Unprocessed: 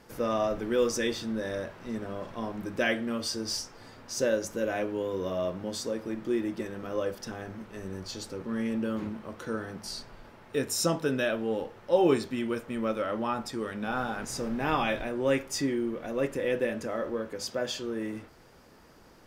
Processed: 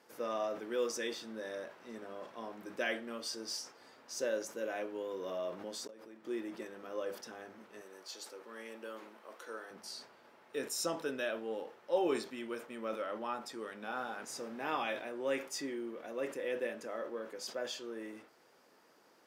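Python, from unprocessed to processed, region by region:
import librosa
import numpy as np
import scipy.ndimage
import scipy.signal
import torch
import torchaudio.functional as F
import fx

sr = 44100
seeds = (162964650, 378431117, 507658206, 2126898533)

y = fx.chain(x, sr, fx.auto_swell(attack_ms=790.0),
    fx.pre_swell(db_per_s=29.0), at=(4.95, 6.24))
y = fx.chain(y, sr, fx.highpass(hz=430.0, slope=12),
    fx.peak_eq(hz=13000.0, db=4.0, octaves=1.0), at=(7.81, 9.71))
y = scipy.signal.sosfilt(scipy.signal.butter(2, 330.0, 'highpass', fs=sr, output='sos'), y)
y = fx.sustainer(y, sr, db_per_s=140.0)
y = F.gain(torch.from_numpy(y), -7.5).numpy()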